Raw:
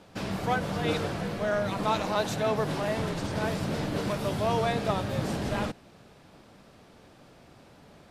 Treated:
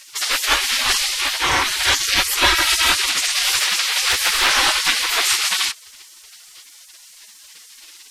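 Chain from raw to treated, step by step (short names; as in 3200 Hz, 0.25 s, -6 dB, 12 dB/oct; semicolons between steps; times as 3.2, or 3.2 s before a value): spectral gate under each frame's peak -25 dB weak; 2.42–2.92 comb 3.1 ms, depth 71%; maximiser +28.5 dB; 3.59–4.55 Doppler distortion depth 0.35 ms; gain -1.5 dB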